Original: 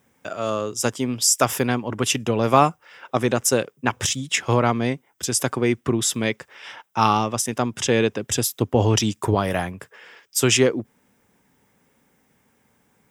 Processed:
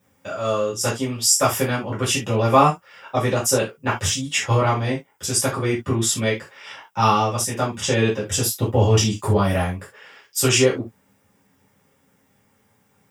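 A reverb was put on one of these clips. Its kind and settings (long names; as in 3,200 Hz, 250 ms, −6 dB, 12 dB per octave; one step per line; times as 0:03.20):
reverb whose tail is shaped and stops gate 100 ms falling, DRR −8 dB
level −7.5 dB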